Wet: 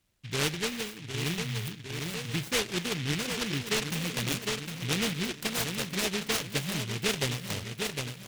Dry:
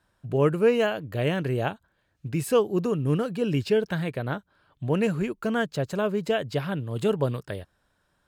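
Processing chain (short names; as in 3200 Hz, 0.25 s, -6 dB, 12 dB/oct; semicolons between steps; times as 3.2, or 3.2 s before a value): Wiener smoothing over 9 samples; 1.41–1.68 spectral delete 210–1800 Hz; 5.47–5.93 bell 190 Hz -9 dB 2.4 oct; feedback echo 0.757 s, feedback 41%, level -8.5 dB; vocal rider within 4 dB 0.5 s; 0.58–2.07 spectral gain 470–2200 Hz -27 dB; on a send at -18 dB: reverb RT60 1.0 s, pre-delay 3 ms; on the sum: noise-modulated delay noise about 2600 Hz, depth 0.4 ms; gain -5.5 dB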